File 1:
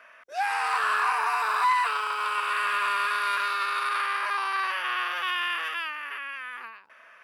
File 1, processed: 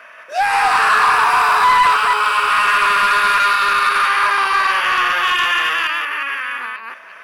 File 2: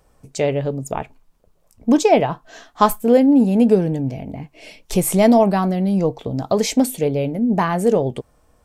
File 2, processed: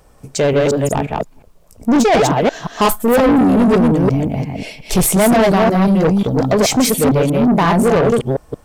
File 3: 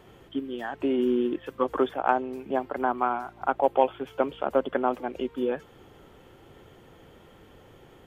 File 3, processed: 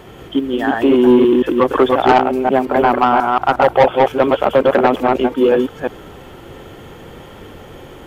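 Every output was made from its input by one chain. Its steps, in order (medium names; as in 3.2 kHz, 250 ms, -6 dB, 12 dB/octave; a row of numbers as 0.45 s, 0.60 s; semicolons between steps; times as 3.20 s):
chunks repeated in reverse 178 ms, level -2 dB; short-mantissa float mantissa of 6-bit; saturation -17.5 dBFS; normalise loudness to -14 LUFS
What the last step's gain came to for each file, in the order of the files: +11.5 dB, +8.5 dB, +14.0 dB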